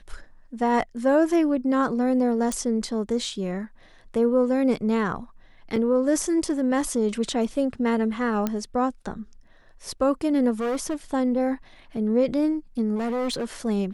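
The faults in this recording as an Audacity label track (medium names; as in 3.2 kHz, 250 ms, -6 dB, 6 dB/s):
2.520000	2.520000	pop
5.760000	5.760000	dropout 4.1 ms
8.470000	8.470000	pop -12 dBFS
10.600000	10.950000	clipped -23 dBFS
12.950000	13.450000	clipped -23.5 dBFS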